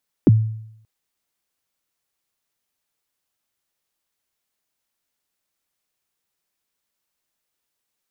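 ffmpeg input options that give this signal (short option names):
-f lavfi -i "aevalsrc='0.501*pow(10,-3*t/0.74)*sin(2*PI*(390*0.028/log(110/390)*(exp(log(110/390)*min(t,0.028)/0.028)-1)+110*max(t-0.028,0)))':d=0.58:s=44100"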